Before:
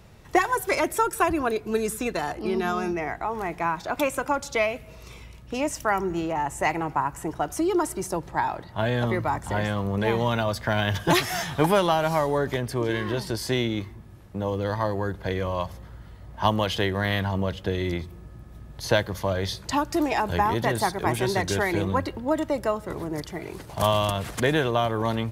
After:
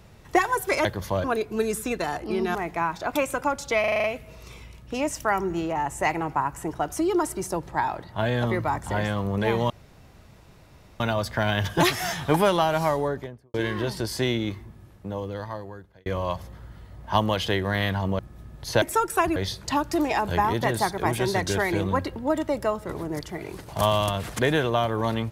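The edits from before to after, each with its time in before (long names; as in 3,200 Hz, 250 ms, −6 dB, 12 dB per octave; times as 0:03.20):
0:00.85–0:01.39: swap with 0:18.98–0:19.37
0:02.70–0:03.39: remove
0:04.64: stutter 0.04 s, 7 plays
0:10.30: splice in room tone 1.30 s
0:12.17–0:12.84: fade out and dull
0:13.95–0:15.36: fade out
0:17.49–0:18.35: remove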